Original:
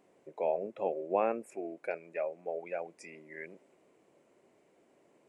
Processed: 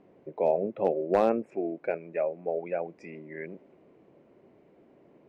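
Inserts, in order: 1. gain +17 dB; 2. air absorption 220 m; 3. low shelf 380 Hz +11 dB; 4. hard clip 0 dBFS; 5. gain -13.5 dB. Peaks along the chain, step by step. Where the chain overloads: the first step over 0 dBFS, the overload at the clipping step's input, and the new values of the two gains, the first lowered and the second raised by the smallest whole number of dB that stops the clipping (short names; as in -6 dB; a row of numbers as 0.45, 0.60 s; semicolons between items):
+1.5, +1.0, +4.5, 0.0, -13.5 dBFS; step 1, 4.5 dB; step 1 +12 dB, step 5 -8.5 dB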